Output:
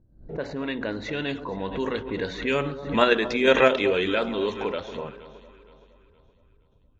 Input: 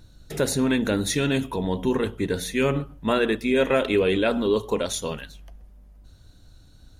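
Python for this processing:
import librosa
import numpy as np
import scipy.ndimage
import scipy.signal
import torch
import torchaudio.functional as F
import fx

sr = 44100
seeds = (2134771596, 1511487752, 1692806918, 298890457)

p1 = fx.doppler_pass(x, sr, speed_mps=17, closest_m=25.0, pass_at_s=3.16)
p2 = fx.env_lowpass(p1, sr, base_hz=360.0, full_db=-19.0)
p3 = scipy.signal.sosfilt(scipy.signal.butter(8, 6900.0, 'lowpass', fs=sr, output='sos'), p2)
p4 = fx.low_shelf(p3, sr, hz=350.0, db=-10.0)
p5 = fx.level_steps(p4, sr, step_db=23)
p6 = p4 + (p5 * 10.0 ** (1.0 / 20.0))
p7 = fx.echo_alternate(p6, sr, ms=234, hz=1100.0, feedback_pct=62, wet_db=-12.5)
p8 = fx.pre_swell(p7, sr, db_per_s=110.0)
y = p8 * 10.0 ** (1.0 / 20.0)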